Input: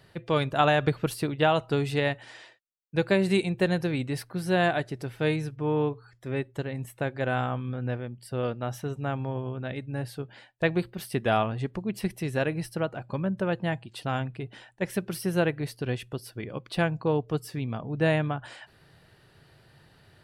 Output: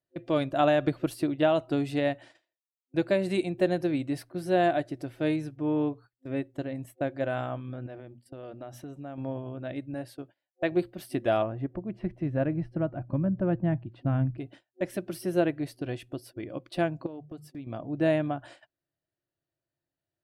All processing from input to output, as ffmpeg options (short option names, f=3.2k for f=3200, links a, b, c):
-filter_complex "[0:a]asettb=1/sr,asplit=3[a][b][c];[a]atrim=end=7.864[d];[b]atrim=start=7.86:end=9.18,asetpts=PTS-STARTPTS,afade=t=in:d=0.004:c=qsin,afade=t=out:st=1.316:d=0.004:c=qsin,bandreject=f=60:t=h:w=6,bandreject=f=120:t=h:w=6,bandreject=f=180:t=h:w=6,bandreject=f=240:t=h:w=6,acompressor=threshold=-35dB:ratio=6:attack=3.2:release=140:knee=1:detection=peak[e];[c]atrim=start=9.176[f];[d][e]acrossfade=d=0.004:c1=hsin:c2=qsin[g];[g][f]acrossfade=d=0.004:c1=qsin:c2=hsin,asettb=1/sr,asplit=3[h][i][j];[h]atrim=end=9.944[k];[i]atrim=start=9.94:end=10.72,asetpts=PTS-STARTPTS,afade=t=in:d=0.004:c=qsin,afade=t=out:st=0.776:d=0.004:c=qsin,highpass=42,lowshelf=f=260:g=-7.5[l];[j]atrim=start=10.716[m];[k][l]acrossfade=d=0.004:c1=hsin:c2=qsin[n];[n][m]acrossfade=d=0.004:c1=qsin:c2=hsin,asettb=1/sr,asplit=3[o][p][q];[o]atrim=end=11.424[r];[p]atrim=start=11.42:end=14.38,asetpts=PTS-STARTPTS,afade=t=in:d=0.004:c=qsin,afade=t=out:st=2.956:d=0.004:c=qsin,lowpass=1.7k,asubboost=boost=8:cutoff=200[s];[q]atrim=start=14.376[t];[r][s]acrossfade=d=0.004:c1=hsin:c2=qsin[u];[u][t]acrossfade=d=0.004:c1=qsin:c2=hsin,asettb=1/sr,asplit=3[v][w][x];[v]atrim=end=17.064[y];[w]atrim=start=17.06:end=17.67,asetpts=PTS-STARTPTS,afade=t=in:d=0.004:c=qsin,afade=t=out:st=0.606:d=0.004:c=qsin,agate=range=-33dB:threshold=-38dB:ratio=3:release=100:detection=peak,bandreject=f=50:t=h:w=6,bandreject=f=100:t=h:w=6,bandreject=f=150:t=h:w=6,bandreject=f=200:t=h:w=6,acompressor=threshold=-35dB:ratio=12:attack=3.2:release=140:knee=1:detection=peak[z];[x]atrim=start=17.666[aa];[y][z]acrossfade=d=0.004:c1=hsin:c2=qsin[ab];[ab][aa]acrossfade=d=0.004:c1=qsin:c2=hsin,agate=range=-30dB:threshold=-44dB:ratio=16:detection=peak,superequalizer=6b=3.16:8b=2.51,volume=-6dB"